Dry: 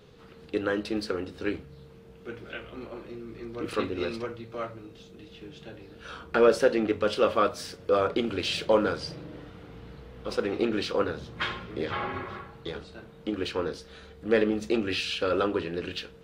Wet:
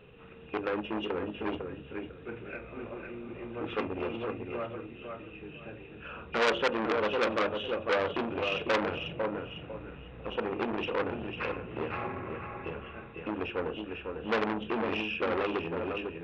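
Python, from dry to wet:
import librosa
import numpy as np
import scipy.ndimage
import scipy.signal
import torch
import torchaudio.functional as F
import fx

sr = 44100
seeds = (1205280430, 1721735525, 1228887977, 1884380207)

y = fx.freq_compress(x, sr, knee_hz=2400.0, ratio=4.0)
y = fx.hum_notches(y, sr, base_hz=50, count=7)
y = fx.echo_feedback(y, sr, ms=501, feedback_pct=22, wet_db=-7.0)
y = fx.dynamic_eq(y, sr, hz=1900.0, q=0.88, threshold_db=-43.0, ratio=4.0, max_db=-6)
y = fx.transformer_sat(y, sr, knee_hz=2600.0)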